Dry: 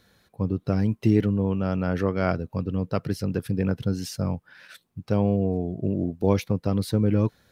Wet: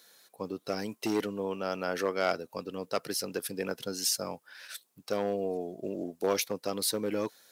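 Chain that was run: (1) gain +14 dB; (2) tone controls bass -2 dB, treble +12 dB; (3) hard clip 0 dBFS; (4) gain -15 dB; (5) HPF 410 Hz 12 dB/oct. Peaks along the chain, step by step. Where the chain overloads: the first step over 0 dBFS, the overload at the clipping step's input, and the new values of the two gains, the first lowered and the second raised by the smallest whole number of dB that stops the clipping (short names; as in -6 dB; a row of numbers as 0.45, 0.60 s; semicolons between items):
+7.0, +6.5, 0.0, -15.0, -14.5 dBFS; step 1, 6.5 dB; step 1 +7 dB, step 4 -8 dB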